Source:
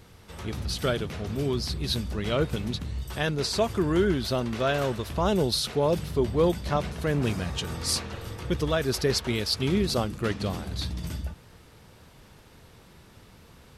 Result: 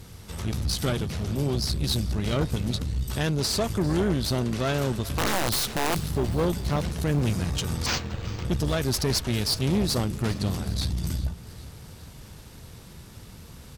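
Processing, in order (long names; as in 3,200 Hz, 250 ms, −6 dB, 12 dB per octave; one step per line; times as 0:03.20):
bass and treble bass +7 dB, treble +8 dB
in parallel at −1 dB: downward compressor, threshold −35 dBFS, peak gain reduction 18.5 dB
on the sum: tube saturation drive 19 dB, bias 0.65
0:05.17–0:06.10: wrap-around overflow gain 18.5 dB
on a send: repeating echo 399 ms, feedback 58%, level −19.5 dB
0:07.86–0:08.45: on the sum: linearly interpolated sample-rate reduction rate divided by 4×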